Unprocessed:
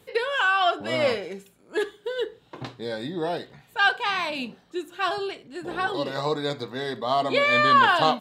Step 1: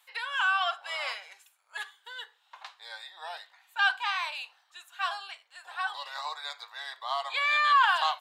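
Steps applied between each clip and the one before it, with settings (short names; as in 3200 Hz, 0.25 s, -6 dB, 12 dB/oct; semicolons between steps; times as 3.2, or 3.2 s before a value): steep high-pass 810 Hz 36 dB/oct; gain -4 dB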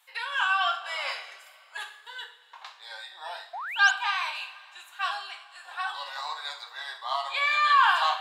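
two-slope reverb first 0.43 s, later 2.7 s, from -18 dB, DRR 2 dB; painted sound rise, 3.53–3.91, 650–7400 Hz -35 dBFS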